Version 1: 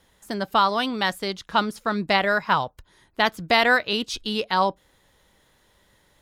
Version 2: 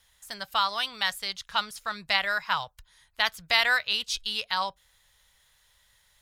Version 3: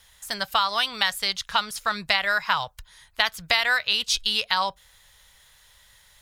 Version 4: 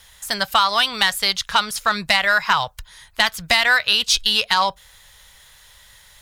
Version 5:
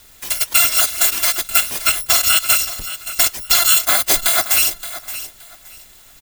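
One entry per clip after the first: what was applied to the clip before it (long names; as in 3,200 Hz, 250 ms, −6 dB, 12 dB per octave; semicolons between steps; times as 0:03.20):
guitar amp tone stack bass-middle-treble 10-0-10; level +2 dB
downward compressor 4 to 1, threshold −27 dBFS, peak gain reduction 9.5 dB; level +8.5 dB
soft clipping −11.5 dBFS, distortion −16 dB; level +7 dB
samples in bit-reversed order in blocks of 256 samples; repeating echo 572 ms, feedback 22%, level −13.5 dB; level +3 dB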